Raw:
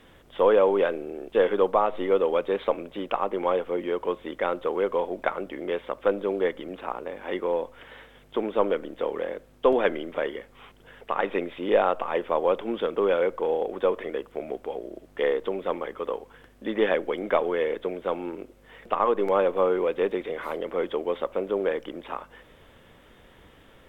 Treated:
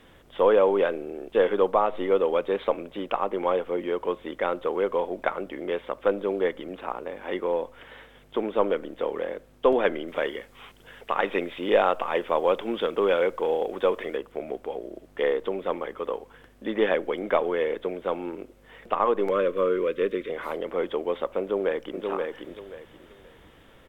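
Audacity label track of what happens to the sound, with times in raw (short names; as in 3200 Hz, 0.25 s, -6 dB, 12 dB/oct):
10.080000	14.170000	high shelf 2100 Hz +6.5 dB
19.300000	20.300000	Butterworth band-stop 800 Hz, Q 1.6
21.400000	22.060000	echo throw 0.53 s, feedback 25%, level -4 dB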